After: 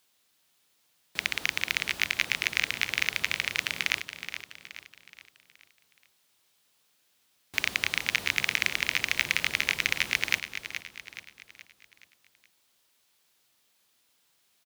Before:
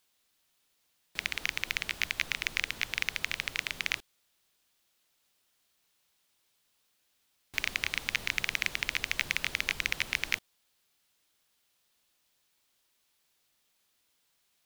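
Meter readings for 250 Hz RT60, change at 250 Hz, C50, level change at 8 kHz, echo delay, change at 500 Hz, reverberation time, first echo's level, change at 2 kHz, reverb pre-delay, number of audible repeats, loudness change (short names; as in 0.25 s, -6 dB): none, +4.5 dB, none, +4.5 dB, 0.423 s, +4.5 dB, none, -10.0 dB, +4.5 dB, none, 4, +4.0 dB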